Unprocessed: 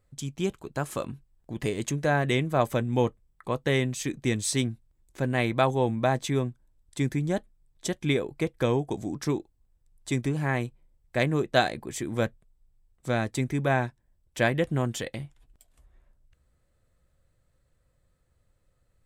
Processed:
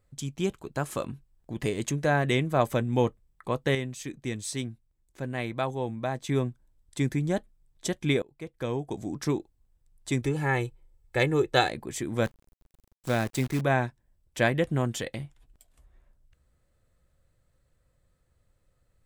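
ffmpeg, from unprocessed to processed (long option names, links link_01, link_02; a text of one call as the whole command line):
ffmpeg -i in.wav -filter_complex "[0:a]asettb=1/sr,asplit=3[link_01][link_02][link_03];[link_01]atrim=end=10.214[link_04];[link_02]atrim=start=10.21:end=11.7,asetpts=PTS-STARTPTS,afade=type=in:duration=0.004:curve=qsin,afade=type=out:start_time=1.486:duration=0.004:curve=qsin,aecho=1:1:2.3:0.65,atrim=end_sample=65709[link_05];[link_03]atrim=start=11.696[link_06];[link_04][link_05]acrossfade=duration=0.004:curve1=hsin:curve2=qsin[link_07];[link_07][link_06]acrossfade=duration=0.004:curve1=qsin:curve2=hsin,asettb=1/sr,asplit=3[link_08][link_09][link_10];[link_08]atrim=end=12.254[link_11];[link_09]atrim=start=12.25:end=13.61,asetpts=PTS-STARTPTS,afade=type=in:duration=0.004:curve=qsin,afade=type=out:start_time=1.356:duration=0.004:curve=qsin,acrusher=bits=7:dc=4:mix=0:aa=0.000001[link_12];[link_10]atrim=start=13.606[link_13];[link_11][link_12]acrossfade=duration=0.004:curve1=hsin:curve2=qsin[link_14];[link_14][link_13]acrossfade=duration=0.004:curve1=qsin:curve2=hsin,asplit=4[link_15][link_16][link_17][link_18];[link_15]atrim=end=3.752[link_19];[link_16]atrim=start=3.748:end=6.292,asetpts=PTS-STARTPTS,volume=-6.5dB[link_20];[link_17]atrim=start=6.288:end=8.22,asetpts=PTS-STARTPTS,afade=type=out:start_time=1.928:duration=0.004:curve=hsin:silence=0.0630957[link_21];[link_18]atrim=start=8.22,asetpts=PTS-STARTPTS,afade=type=in:duration=1.03:silence=0.0630957[link_22];[link_19][link_20]acrossfade=duration=0.004:curve1=hsin:curve2=hsin[link_23];[link_21][link_22]concat=n=2:v=0:a=1[link_24];[link_23][link_24]acrossfade=duration=0.004:curve1=hsin:curve2=hsin" out.wav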